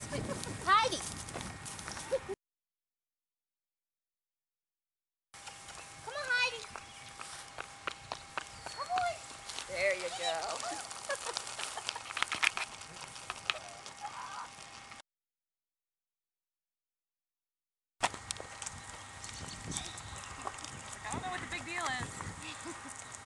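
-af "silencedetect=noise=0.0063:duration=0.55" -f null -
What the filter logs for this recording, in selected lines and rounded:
silence_start: 2.34
silence_end: 5.34 | silence_duration: 3.00
silence_start: 15.01
silence_end: 18.01 | silence_duration: 3.00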